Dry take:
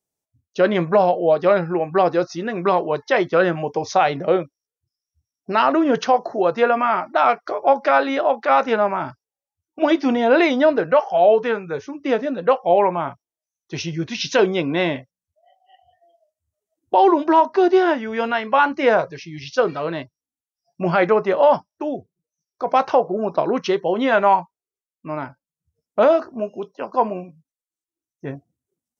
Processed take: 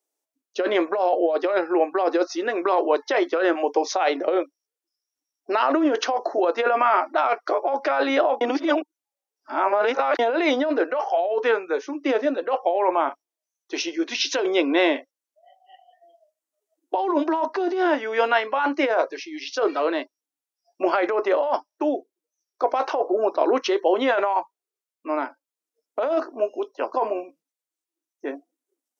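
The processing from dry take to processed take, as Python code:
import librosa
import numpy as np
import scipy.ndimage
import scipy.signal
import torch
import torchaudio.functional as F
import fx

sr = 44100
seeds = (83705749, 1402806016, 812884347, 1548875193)

y = fx.edit(x, sr, fx.reverse_span(start_s=8.41, length_s=1.78), tone=tone)
y = fx.over_compress(y, sr, threshold_db=-19.0, ratio=-1.0)
y = scipy.signal.sosfilt(scipy.signal.ellip(4, 1.0, 50, 290.0, 'highpass', fs=sr, output='sos'), y)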